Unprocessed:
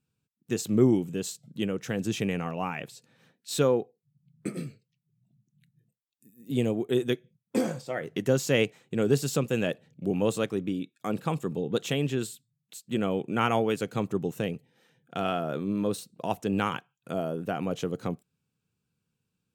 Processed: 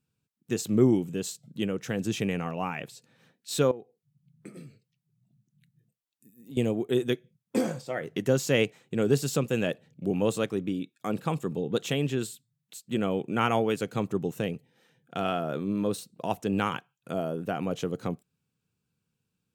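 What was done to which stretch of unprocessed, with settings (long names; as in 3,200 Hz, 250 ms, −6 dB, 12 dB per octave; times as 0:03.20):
0:03.71–0:06.57: downward compressor 2 to 1, threshold −49 dBFS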